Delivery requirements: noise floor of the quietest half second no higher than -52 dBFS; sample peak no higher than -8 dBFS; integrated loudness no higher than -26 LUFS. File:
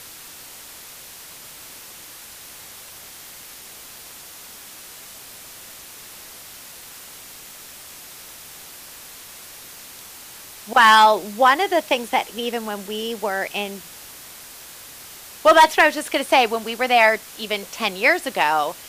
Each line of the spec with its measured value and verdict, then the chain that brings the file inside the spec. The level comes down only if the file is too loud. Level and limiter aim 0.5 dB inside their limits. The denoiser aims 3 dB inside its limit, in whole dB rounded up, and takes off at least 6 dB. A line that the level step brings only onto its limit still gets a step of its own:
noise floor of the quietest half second -41 dBFS: fail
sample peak -3.5 dBFS: fail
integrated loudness -18.0 LUFS: fail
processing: denoiser 6 dB, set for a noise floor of -41 dBFS; gain -8.5 dB

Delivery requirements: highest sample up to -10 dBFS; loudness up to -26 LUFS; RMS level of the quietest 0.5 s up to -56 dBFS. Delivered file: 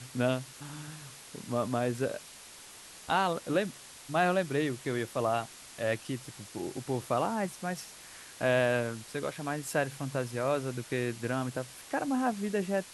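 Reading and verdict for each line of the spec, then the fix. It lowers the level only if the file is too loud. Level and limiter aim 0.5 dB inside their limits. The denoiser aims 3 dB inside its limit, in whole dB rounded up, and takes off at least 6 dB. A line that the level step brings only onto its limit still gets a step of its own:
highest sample -14.0 dBFS: OK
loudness -32.0 LUFS: OK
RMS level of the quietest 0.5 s -50 dBFS: fail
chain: denoiser 9 dB, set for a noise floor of -50 dBFS

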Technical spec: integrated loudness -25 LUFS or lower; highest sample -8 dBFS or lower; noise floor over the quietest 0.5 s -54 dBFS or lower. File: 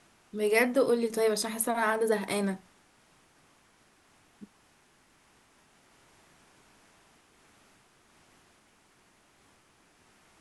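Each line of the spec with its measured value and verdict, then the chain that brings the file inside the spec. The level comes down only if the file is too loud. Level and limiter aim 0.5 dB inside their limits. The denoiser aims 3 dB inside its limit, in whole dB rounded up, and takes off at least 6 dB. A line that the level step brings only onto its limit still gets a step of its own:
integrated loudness -28.0 LUFS: OK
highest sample -11.0 dBFS: OK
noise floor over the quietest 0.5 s -64 dBFS: OK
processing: none

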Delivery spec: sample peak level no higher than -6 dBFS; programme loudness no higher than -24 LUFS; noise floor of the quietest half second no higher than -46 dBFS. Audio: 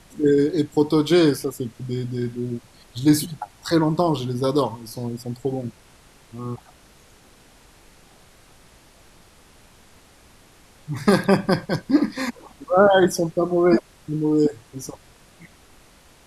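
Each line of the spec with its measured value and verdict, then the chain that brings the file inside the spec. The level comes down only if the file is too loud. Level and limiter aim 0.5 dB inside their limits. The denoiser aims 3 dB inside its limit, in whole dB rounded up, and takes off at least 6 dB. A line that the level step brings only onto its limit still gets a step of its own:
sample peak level -3.0 dBFS: fail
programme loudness -21.5 LUFS: fail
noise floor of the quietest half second -52 dBFS: OK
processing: gain -3 dB; limiter -6.5 dBFS

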